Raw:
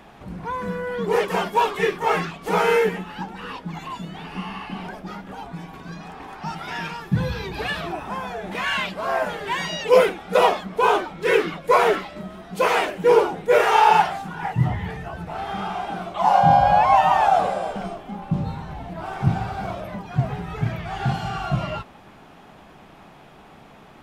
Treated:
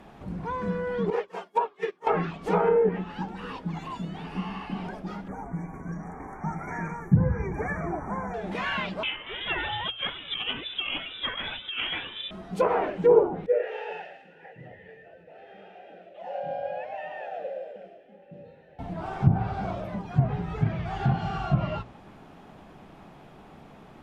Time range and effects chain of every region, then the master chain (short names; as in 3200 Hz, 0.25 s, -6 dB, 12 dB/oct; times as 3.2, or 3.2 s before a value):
1.1–2.07 HPF 310 Hz + upward expander 2.5:1, over -32 dBFS
5.28–8.34 brick-wall FIR band-stop 2400–5600 Hz + low shelf 150 Hz +4 dB
9.03–12.31 negative-ratio compressor -20 dBFS, ratio -0.5 + inverted band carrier 3700 Hz
13.46–18.79 vowel filter e + thin delay 0.111 s, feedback 52%, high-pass 1800 Hz, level -8.5 dB
whole clip: notches 60/120 Hz; treble ducked by the level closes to 760 Hz, closed at -14 dBFS; tilt shelf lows +3.5 dB, about 710 Hz; gain -3 dB